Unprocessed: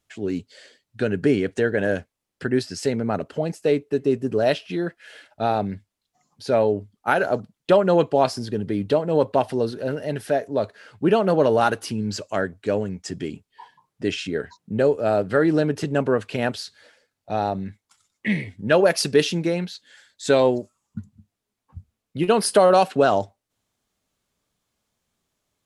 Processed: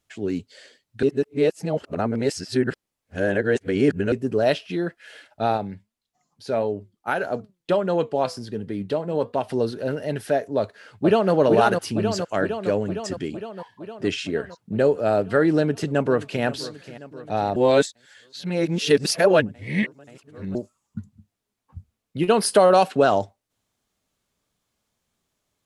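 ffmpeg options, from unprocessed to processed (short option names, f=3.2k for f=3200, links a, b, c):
-filter_complex "[0:a]asplit=3[a][b][c];[a]afade=t=out:st=5.56:d=0.02[d];[b]flanger=delay=4.1:depth=1.9:regen=87:speed=1.5:shape=sinusoidal,afade=t=in:st=5.56:d=0.02,afade=t=out:st=9.49:d=0.02[e];[c]afade=t=in:st=9.49:d=0.02[f];[d][e][f]amix=inputs=3:normalize=0,asplit=2[g][h];[h]afade=t=in:st=10.58:d=0.01,afade=t=out:st=11.32:d=0.01,aecho=0:1:460|920|1380|1840|2300|2760|3220|3680|4140|4600|5060|5520:0.630957|0.44167|0.309169|0.216418|0.151493|0.106045|0.0742315|0.0519621|0.0363734|0.0254614|0.017823|0.0124761[i];[g][i]amix=inputs=2:normalize=0,asplit=2[j][k];[k]afade=t=in:st=15.52:d=0.01,afade=t=out:st=16.44:d=0.01,aecho=0:1:530|1060|1590|2120|2650|3180|3710:0.158489|0.103018|0.0669617|0.0435251|0.0282913|0.0183894|0.0119531[l];[j][l]amix=inputs=2:normalize=0,asplit=5[m][n][o][p][q];[m]atrim=end=1.032[r];[n]atrim=start=1.028:end=4.122,asetpts=PTS-STARTPTS,areverse[s];[o]atrim=start=4.118:end=17.562[t];[p]atrim=start=17.558:end=20.552,asetpts=PTS-STARTPTS,areverse[u];[q]atrim=start=20.548[v];[r][s]acrossfade=d=0.004:c1=hsin:c2=hsin[w];[w][t]acrossfade=d=0.004:c1=hsin:c2=hsin[x];[x][u]acrossfade=d=0.004:c1=hsin:c2=hsin[y];[y][v]acrossfade=d=0.004:c1=hsin:c2=hsin"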